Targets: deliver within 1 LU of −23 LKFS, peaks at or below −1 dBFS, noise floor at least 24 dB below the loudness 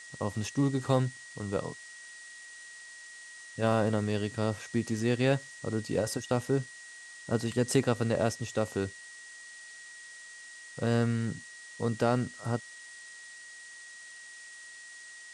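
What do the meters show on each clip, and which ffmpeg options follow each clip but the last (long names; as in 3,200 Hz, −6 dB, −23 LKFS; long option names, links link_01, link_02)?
interfering tone 1,900 Hz; level of the tone −47 dBFS; background noise floor −49 dBFS; target noise floor −55 dBFS; integrated loudness −31.0 LKFS; sample peak −12.0 dBFS; target loudness −23.0 LKFS
→ -af "bandreject=frequency=1900:width=30"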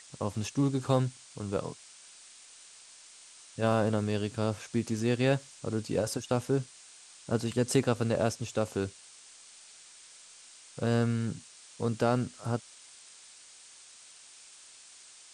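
interfering tone none found; background noise floor −54 dBFS; target noise floor −55 dBFS
→ -af "afftdn=noise_reduction=6:noise_floor=-54"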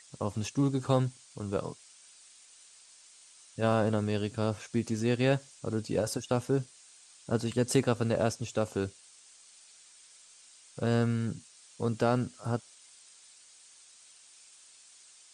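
background noise floor −57 dBFS; integrated loudness −31.0 LKFS; sample peak −11.5 dBFS; target loudness −23.0 LKFS
→ -af "volume=8dB"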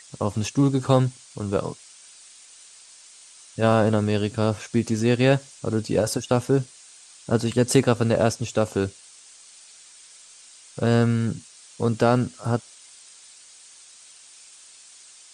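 integrated loudness −23.0 LKFS; sample peak −3.5 dBFS; background noise floor −49 dBFS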